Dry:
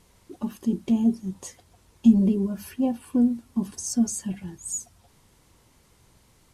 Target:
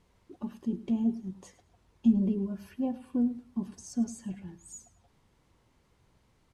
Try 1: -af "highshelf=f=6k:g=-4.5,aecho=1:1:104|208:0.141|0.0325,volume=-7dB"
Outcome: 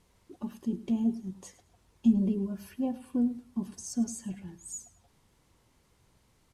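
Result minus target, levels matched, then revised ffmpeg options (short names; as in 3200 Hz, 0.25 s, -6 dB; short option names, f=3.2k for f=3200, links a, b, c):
8000 Hz band +6.5 dB
-af "highshelf=f=6k:g=-15,aecho=1:1:104|208:0.141|0.0325,volume=-7dB"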